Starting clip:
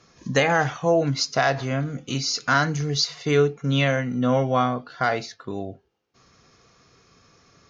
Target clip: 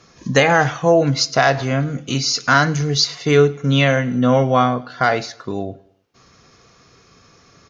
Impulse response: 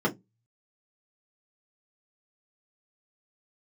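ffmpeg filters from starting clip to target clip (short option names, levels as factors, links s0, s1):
-af "aecho=1:1:105|210|315:0.0708|0.0304|0.0131,volume=2"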